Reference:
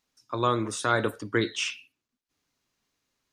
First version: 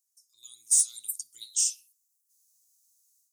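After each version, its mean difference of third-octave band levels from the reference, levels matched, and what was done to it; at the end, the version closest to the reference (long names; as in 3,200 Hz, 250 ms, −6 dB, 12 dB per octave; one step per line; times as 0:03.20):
21.5 dB: inverse Chebyshev high-pass filter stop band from 1,800 Hz, stop band 70 dB
automatic gain control gain up to 12 dB
in parallel at −3.5 dB: hard clipping −25.5 dBFS, distortion −12 dB
on the sum: level +3.5 dB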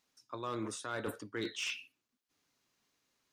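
4.5 dB: low-shelf EQ 82 Hz −11 dB
reversed playback
downward compressor 8 to 1, threshold −35 dBFS, peak gain reduction 16 dB
reversed playback
hard clipping −30 dBFS, distortion −20 dB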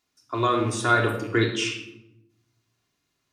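7.0 dB: loose part that buzzes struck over −36 dBFS, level −34 dBFS
high-pass filter 47 Hz
rectangular room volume 2,500 cubic metres, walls furnished, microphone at 3.2 metres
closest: second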